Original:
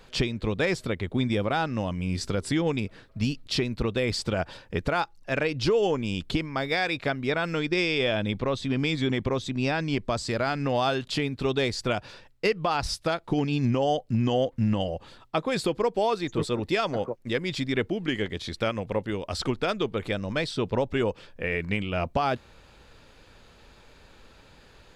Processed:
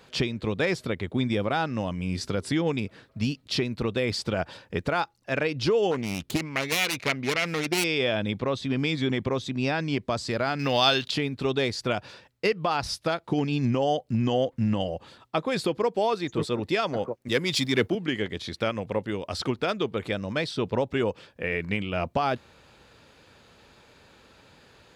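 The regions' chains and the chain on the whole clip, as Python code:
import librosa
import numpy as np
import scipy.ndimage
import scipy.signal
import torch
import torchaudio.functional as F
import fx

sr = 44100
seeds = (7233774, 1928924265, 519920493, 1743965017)

y = fx.chain(x, sr, fx.self_delay(depth_ms=0.39),
    fx.dynamic_eq(hz=2200.0, q=2.6, threshold_db=-43.0, ratio=4.0, max_db=5), at=(5.91, 7.84))
y = fx.chain(y, sr, fx.peak_eq(hz=4300.0, db=13.0, octaves=2.1),
    fx.notch(hz=6800.0, q=23.0),
    fx.quant_companded(bits=8), at=(10.59, 11.11))
y = fx.chain(y, sr, fx.high_shelf(hz=4700.0, db=11.5),
    fx.leveller(passes=1),
    fx.band_widen(depth_pct=70), at=(17.28, 17.95))
y = scipy.signal.sosfilt(scipy.signal.butter(2, 85.0, 'highpass', fs=sr, output='sos'), y)
y = fx.dynamic_eq(y, sr, hz=7800.0, q=3.6, threshold_db=-54.0, ratio=4.0, max_db=-4)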